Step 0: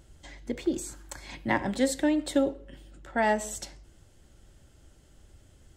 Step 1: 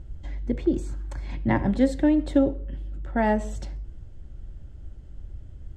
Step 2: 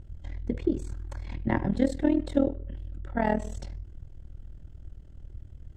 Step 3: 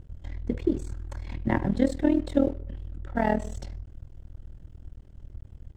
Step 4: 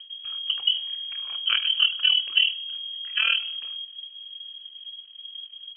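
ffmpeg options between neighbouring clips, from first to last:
ffmpeg -i in.wav -af "aemphasis=mode=reproduction:type=riaa" out.wav
ffmpeg -i in.wav -af "tremolo=f=40:d=0.889" out.wav
ffmpeg -i in.wav -af "aeval=exprs='sgn(val(0))*max(abs(val(0))-0.00188,0)':channel_layout=same,volume=1.5dB" out.wav
ffmpeg -i in.wav -af "lowpass=frequency=2800:width_type=q:width=0.5098,lowpass=frequency=2800:width_type=q:width=0.6013,lowpass=frequency=2800:width_type=q:width=0.9,lowpass=frequency=2800:width_type=q:width=2.563,afreqshift=-3300,volume=1.5dB" out.wav

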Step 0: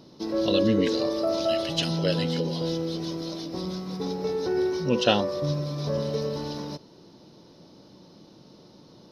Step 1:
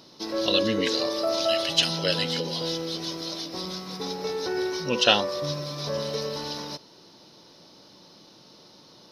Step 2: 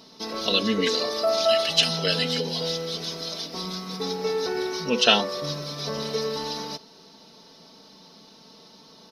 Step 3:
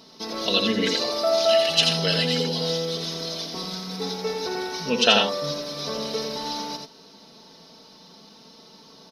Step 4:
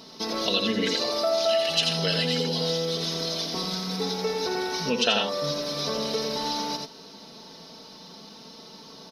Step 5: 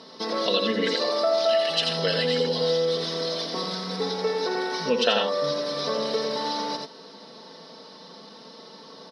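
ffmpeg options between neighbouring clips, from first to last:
ffmpeg -i in.wav -af "tiltshelf=frequency=640:gain=-7" out.wav
ffmpeg -i in.wav -af "aecho=1:1:4.5:0.69" out.wav
ffmpeg -i in.wav -af "aecho=1:1:85:0.596" out.wav
ffmpeg -i in.wav -af "acompressor=threshold=-30dB:ratio=2,volume=3.5dB" out.wav
ffmpeg -i in.wav -af "highpass=170,equalizer=frequency=520:width_type=q:width=4:gain=7,equalizer=frequency=1100:width_type=q:width=4:gain=4,equalizer=frequency=1800:width_type=q:width=4:gain=5,equalizer=frequency=2500:width_type=q:width=4:gain=-4,equalizer=frequency=6500:width_type=q:width=4:gain=-10,lowpass=frequency=8900:width=0.5412,lowpass=frequency=8900:width=1.3066" out.wav

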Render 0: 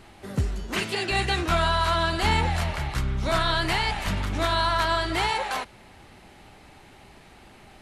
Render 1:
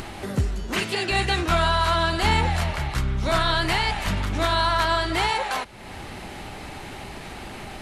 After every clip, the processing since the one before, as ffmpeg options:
ffmpeg -i in.wav -af "acompressor=mode=upward:threshold=-27dB:ratio=2.5,volume=2dB" out.wav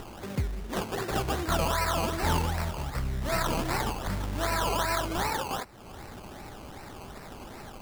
ffmpeg -i in.wav -af "acrusher=samples=19:mix=1:aa=0.000001:lfo=1:lforange=11.4:lforate=2.6,volume=-6.5dB" out.wav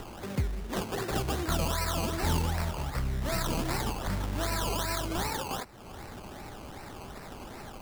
ffmpeg -i in.wav -filter_complex "[0:a]acrossover=split=410|3000[link_01][link_02][link_03];[link_02]acompressor=threshold=-33dB:ratio=6[link_04];[link_01][link_04][link_03]amix=inputs=3:normalize=0" out.wav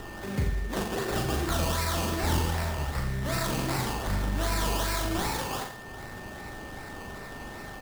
ffmpeg -i in.wav -filter_complex "[0:a]aeval=exprs='val(0)+0.00316*sin(2*PI*1800*n/s)':channel_layout=same,asplit=2[link_01][link_02];[link_02]aecho=0:1:40|86|138.9|199.7|269.7:0.631|0.398|0.251|0.158|0.1[link_03];[link_01][link_03]amix=inputs=2:normalize=0" out.wav

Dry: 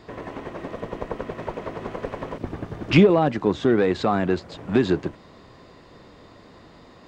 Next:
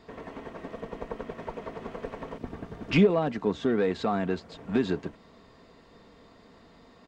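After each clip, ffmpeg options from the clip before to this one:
ffmpeg -i in.wav -af "aecho=1:1:4.4:0.39,volume=-7dB" out.wav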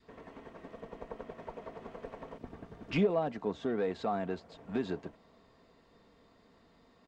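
ffmpeg -i in.wav -af "adynamicequalizer=threshold=0.01:dfrequency=680:dqfactor=1.4:tfrequency=680:tqfactor=1.4:attack=5:release=100:ratio=0.375:range=3:mode=boostabove:tftype=bell,volume=-9dB" out.wav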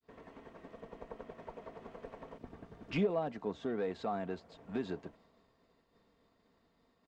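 ffmpeg -i in.wav -af "agate=range=-33dB:threshold=-58dB:ratio=3:detection=peak,volume=-3.5dB" out.wav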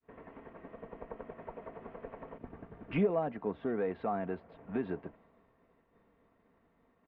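ffmpeg -i in.wav -af "lowpass=frequency=2500:width=0.5412,lowpass=frequency=2500:width=1.3066,volume=2.5dB" out.wav

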